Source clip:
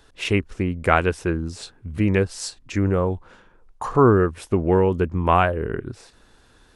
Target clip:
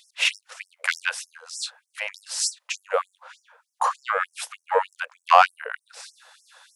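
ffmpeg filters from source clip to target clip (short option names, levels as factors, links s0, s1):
-af "acontrast=90,afftfilt=real='re*gte(b*sr/1024,460*pow(5300/460,0.5+0.5*sin(2*PI*3.3*pts/sr)))':imag='im*gte(b*sr/1024,460*pow(5300/460,0.5+0.5*sin(2*PI*3.3*pts/sr)))':win_size=1024:overlap=0.75"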